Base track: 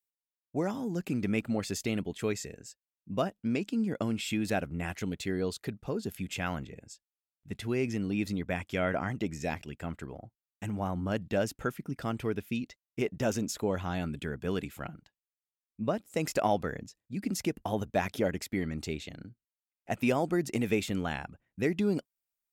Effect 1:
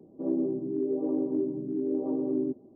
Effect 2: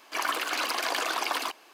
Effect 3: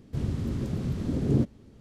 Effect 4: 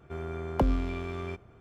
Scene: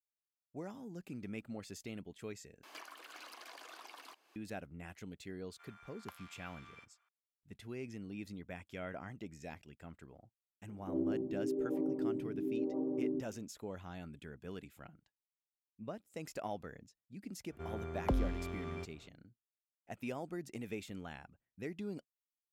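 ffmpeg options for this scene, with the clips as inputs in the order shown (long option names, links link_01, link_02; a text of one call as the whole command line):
ffmpeg -i bed.wav -i cue0.wav -i cue1.wav -i cue2.wav -i cue3.wav -filter_complex "[4:a]asplit=2[link_01][link_02];[0:a]volume=-14dB[link_03];[2:a]acompressor=threshold=-44dB:ratio=16:attack=5.4:release=768:knee=1:detection=peak[link_04];[link_01]highpass=frequency=1100:width=0.5412,highpass=frequency=1100:width=1.3066[link_05];[link_03]asplit=2[link_06][link_07];[link_06]atrim=end=2.634[link_08];[link_04]atrim=end=1.73,asetpts=PTS-STARTPTS,volume=-2.5dB[link_09];[link_07]atrim=start=4.356[link_10];[link_05]atrim=end=1.6,asetpts=PTS-STARTPTS,volume=-11.5dB,afade=type=in:duration=0.004:curve=hsin,afade=type=out:start_time=1.596:duration=0.004:curve=hsin,adelay=242109S[link_11];[1:a]atrim=end=2.75,asetpts=PTS-STARTPTS,volume=-7dB,afade=type=in:duration=0.004:curve=hsin,afade=type=out:start_time=2.746:duration=0.004:curve=hsin,adelay=10680[link_12];[link_02]atrim=end=1.6,asetpts=PTS-STARTPTS,volume=-7dB,afade=type=in:duration=0.004:curve=hsin,afade=type=out:start_time=1.596:duration=0.004:curve=hsin,adelay=17490[link_13];[link_08][link_09]acrossfade=duration=0.004:curve1=hsin:curve2=hsin[link_14];[link_14][link_10]acrossfade=duration=0.004:curve1=hsin:curve2=hsin[link_15];[link_15][link_11][link_12][link_13]amix=inputs=4:normalize=0" out.wav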